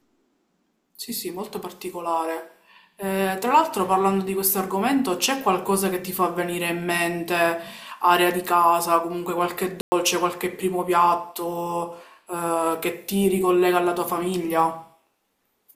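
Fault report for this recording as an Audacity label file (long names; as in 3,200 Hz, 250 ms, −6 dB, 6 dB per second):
9.810000	9.920000	drop-out 110 ms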